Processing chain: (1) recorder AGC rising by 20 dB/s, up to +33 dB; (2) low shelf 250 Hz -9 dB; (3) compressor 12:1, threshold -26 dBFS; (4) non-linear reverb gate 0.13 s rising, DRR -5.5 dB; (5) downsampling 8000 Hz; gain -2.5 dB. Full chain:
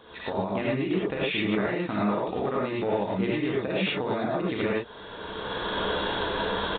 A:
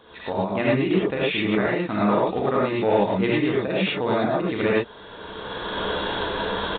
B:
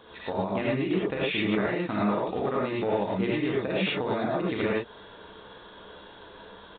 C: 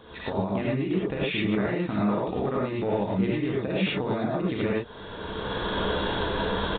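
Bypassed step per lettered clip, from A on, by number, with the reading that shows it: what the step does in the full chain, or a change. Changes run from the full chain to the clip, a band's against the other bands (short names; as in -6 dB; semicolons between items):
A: 3, mean gain reduction 3.5 dB; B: 1, momentary loudness spread change +15 LU; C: 2, 125 Hz band +5.0 dB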